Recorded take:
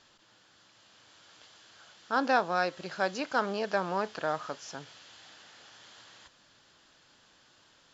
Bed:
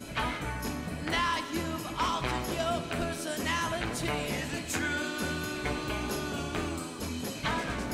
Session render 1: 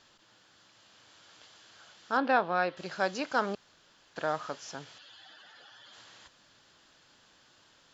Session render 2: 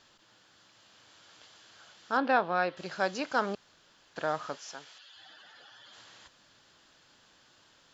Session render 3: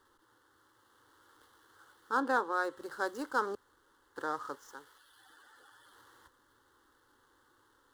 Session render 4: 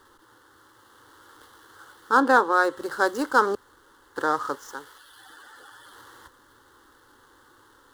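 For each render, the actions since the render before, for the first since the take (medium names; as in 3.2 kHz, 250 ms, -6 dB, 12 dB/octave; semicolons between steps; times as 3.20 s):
2.17–2.77 s: low-pass 3.8 kHz 24 dB/octave; 3.55–4.16 s: room tone; 4.98–5.93 s: spectral contrast enhancement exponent 2.2
4.56–5.15 s: high-pass 510 Hz -> 1.2 kHz 6 dB/octave
median filter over 9 samples; static phaser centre 660 Hz, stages 6
trim +12 dB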